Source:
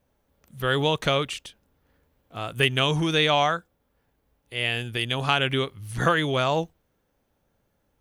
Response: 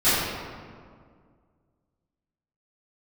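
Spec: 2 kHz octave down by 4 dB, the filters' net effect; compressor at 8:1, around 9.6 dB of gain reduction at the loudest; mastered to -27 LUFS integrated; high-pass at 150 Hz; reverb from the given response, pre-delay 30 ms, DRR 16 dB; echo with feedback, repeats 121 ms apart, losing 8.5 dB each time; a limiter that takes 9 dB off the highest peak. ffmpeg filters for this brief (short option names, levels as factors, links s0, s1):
-filter_complex "[0:a]highpass=150,equalizer=f=2000:t=o:g=-5.5,acompressor=threshold=0.0447:ratio=8,alimiter=limit=0.075:level=0:latency=1,aecho=1:1:121|242|363|484:0.376|0.143|0.0543|0.0206,asplit=2[s0][s1];[1:a]atrim=start_sample=2205,adelay=30[s2];[s1][s2]afir=irnorm=-1:irlink=0,volume=0.0178[s3];[s0][s3]amix=inputs=2:normalize=0,volume=2.37"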